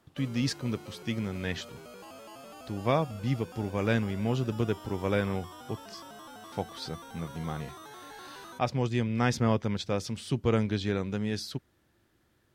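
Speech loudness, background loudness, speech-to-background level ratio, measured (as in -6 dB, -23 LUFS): -31.5 LUFS, -47.0 LUFS, 15.5 dB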